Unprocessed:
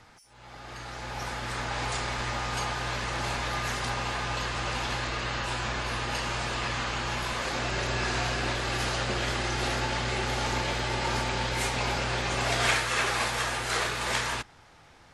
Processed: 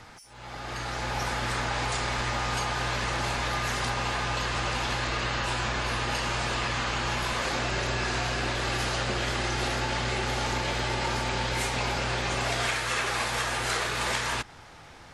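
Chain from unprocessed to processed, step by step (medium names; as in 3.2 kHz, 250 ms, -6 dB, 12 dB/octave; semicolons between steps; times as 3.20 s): compression, threshold -32 dBFS, peak gain reduction 11.5 dB; trim +6.5 dB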